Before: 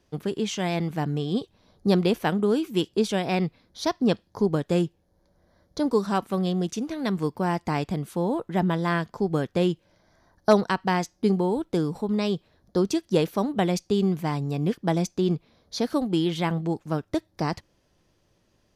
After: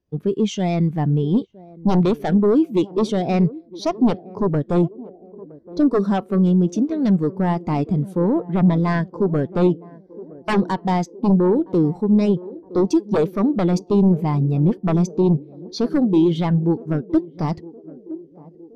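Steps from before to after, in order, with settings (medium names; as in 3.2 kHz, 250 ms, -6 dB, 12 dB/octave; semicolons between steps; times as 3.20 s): sine folder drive 13 dB, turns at -5.5 dBFS; band-passed feedback delay 966 ms, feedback 74%, band-pass 400 Hz, level -12 dB; spectral contrast expander 1.5:1; trim -5.5 dB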